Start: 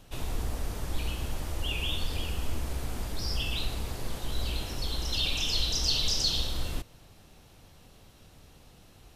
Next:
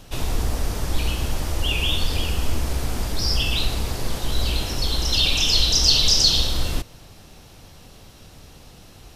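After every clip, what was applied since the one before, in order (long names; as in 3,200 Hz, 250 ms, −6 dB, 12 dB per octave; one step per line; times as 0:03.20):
parametric band 5,300 Hz +3.5 dB 0.6 octaves
level +9 dB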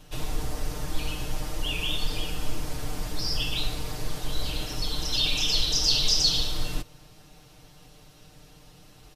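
comb filter 6.6 ms, depth 85%
level −8.5 dB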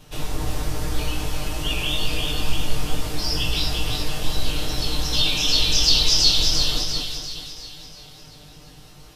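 echo with a time of its own for lows and highs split 1,800 Hz, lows 207 ms, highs 345 ms, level −3.5 dB
chorus effect 2.3 Hz, delay 18.5 ms, depth 2.2 ms
level +7 dB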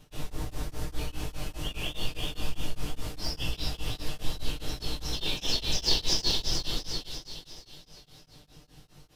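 in parallel at −10.5 dB: decimation without filtering 33×
on the sum: tremolo along a rectified sine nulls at 4.9 Hz
level −8 dB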